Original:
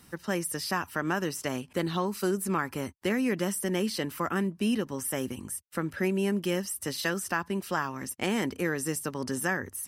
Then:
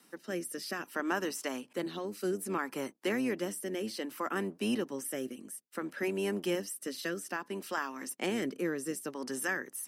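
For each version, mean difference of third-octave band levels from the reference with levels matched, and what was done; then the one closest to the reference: 3.5 dB: octaver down 1 oct, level -3 dB; HPF 230 Hz 24 dB/oct; rotary speaker horn 0.6 Hz; gain -2 dB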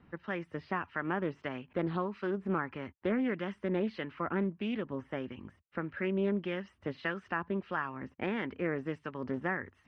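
8.0 dB: LPF 2700 Hz 24 dB/oct; harmonic tremolo 1.6 Hz, depth 50%, crossover 1100 Hz; Doppler distortion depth 0.21 ms; gain -2 dB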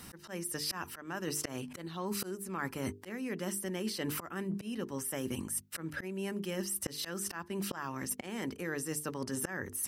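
5.0 dB: notches 50/100/150/200/250/300/350/400/450 Hz; auto swell 0.375 s; reverse; compressor 12:1, threshold -40 dBFS, peak gain reduction 16.5 dB; reverse; gain +7 dB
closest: first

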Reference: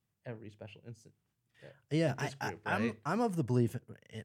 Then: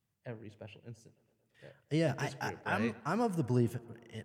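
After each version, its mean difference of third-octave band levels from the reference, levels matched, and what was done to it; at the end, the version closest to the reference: 1.5 dB: tape echo 0.113 s, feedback 84%, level -21.5 dB, low-pass 3500 Hz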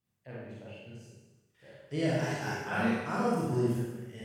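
8.0 dB: Schroeder reverb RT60 1.1 s, combs from 31 ms, DRR -7 dB; gain -4.5 dB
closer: first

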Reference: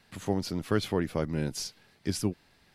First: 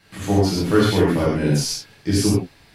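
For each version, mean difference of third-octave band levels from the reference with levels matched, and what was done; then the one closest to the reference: 7.0 dB: non-linear reverb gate 0.16 s flat, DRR -8 dB; gain +3 dB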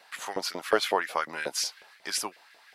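10.0 dB: LFO high-pass saw up 5.5 Hz 520–2100 Hz; gain +6 dB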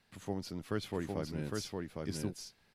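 5.5 dB: echo 0.808 s -3 dB; gain -9 dB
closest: third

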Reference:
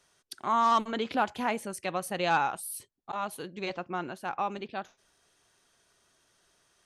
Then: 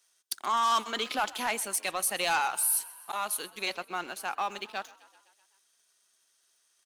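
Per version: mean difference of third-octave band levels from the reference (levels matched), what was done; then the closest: 8.5 dB: HPF 170 Hz 24 dB/oct; tilt +4 dB/oct; sample leveller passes 2; on a send: frequency-shifting echo 0.128 s, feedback 65%, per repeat +33 Hz, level -21 dB; on the sum: gain -6.5 dB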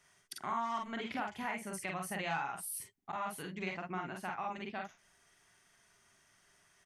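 5.5 dB: thirty-one-band EQ 160 Hz +5 dB, 315 Hz -5 dB, 500 Hz -9 dB, 2000 Hz +8 dB, 4000 Hz -7 dB; compressor 3:1, threshold -37 dBFS, peak gain reduction 12.5 dB; on a send: early reflections 43 ms -4 dB, 53 ms -6.5 dB; on the sum: gain -2 dB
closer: second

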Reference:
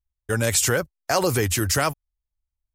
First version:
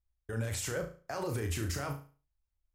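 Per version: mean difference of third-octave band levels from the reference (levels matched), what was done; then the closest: 5.5 dB: high shelf 2800 Hz -9.5 dB; reverse; compressor, threshold -28 dBFS, peak gain reduction 10.5 dB; reverse; limiter -28 dBFS, peak gain reduction 11 dB; flutter echo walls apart 6.1 m, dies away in 0.37 s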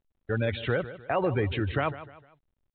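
13.0 dB: spectral gate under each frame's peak -25 dB strong; bell 1600 Hz -3 dB 1.4 oct; feedback echo 0.152 s, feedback 37%, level -14.5 dB; gain -4 dB; µ-law 64 kbps 8000 Hz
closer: first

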